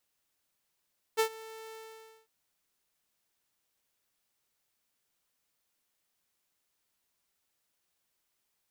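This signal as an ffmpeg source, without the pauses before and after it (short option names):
-f lavfi -i "aevalsrc='0.1*(2*mod(444*t,1)-1)':d=1.102:s=44100,afade=t=in:d=0.028,afade=t=out:st=0.028:d=0.087:silence=0.0841,afade=t=out:st=0.55:d=0.552"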